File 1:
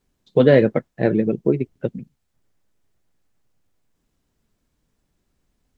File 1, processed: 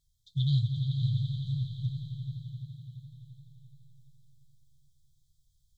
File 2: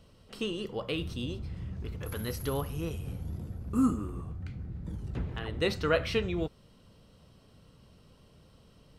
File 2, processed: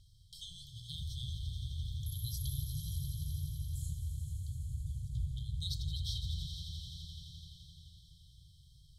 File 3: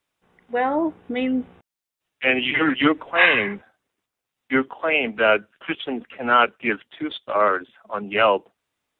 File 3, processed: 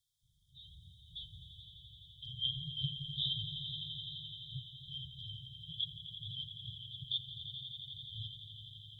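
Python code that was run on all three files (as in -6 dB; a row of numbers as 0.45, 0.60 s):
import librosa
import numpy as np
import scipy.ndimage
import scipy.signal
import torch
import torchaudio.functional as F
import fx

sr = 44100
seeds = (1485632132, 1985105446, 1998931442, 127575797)

p1 = fx.brickwall_bandstop(x, sr, low_hz=150.0, high_hz=3100.0)
p2 = p1 + fx.echo_swell(p1, sr, ms=85, loudest=5, wet_db=-12.0, dry=0)
p3 = fx.echo_warbled(p2, sr, ms=439, feedback_pct=45, rate_hz=2.8, cents=57, wet_db=-15.0)
y = F.gain(torch.from_numpy(p3), -1.5).numpy()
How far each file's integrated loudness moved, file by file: -13.5, -7.0, -19.5 LU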